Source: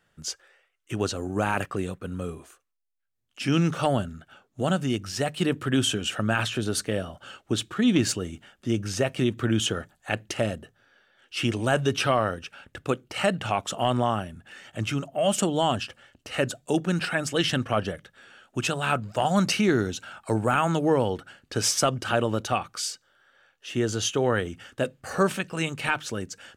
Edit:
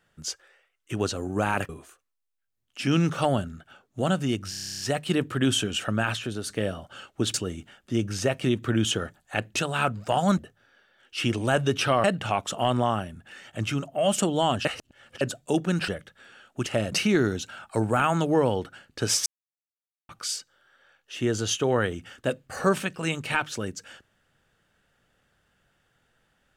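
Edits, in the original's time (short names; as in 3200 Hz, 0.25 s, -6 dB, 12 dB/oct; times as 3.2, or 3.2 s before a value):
1.69–2.3 cut
5.11 stutter 0.03 s, 11 plays
6.18–6.81 fade out, to -7 dB
7.65–8.09 cut
10.31–10.57 swap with 18.64–19.46
12.23–13.24 cut
15.85–16.41 reverse
17.08–17.86 cut
21.8–22.63 mute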